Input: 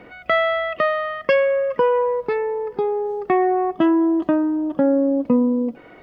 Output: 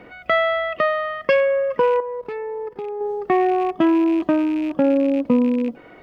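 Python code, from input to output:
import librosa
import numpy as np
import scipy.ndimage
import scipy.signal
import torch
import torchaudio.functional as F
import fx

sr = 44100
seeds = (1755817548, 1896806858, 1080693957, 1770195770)

y = fx.rattle_buzz(x, sr, strikes_db=-33.0, level_db=-27.0)
y = fx.level_steps(y, sr, step_db=14, at=(2.0, 3.01))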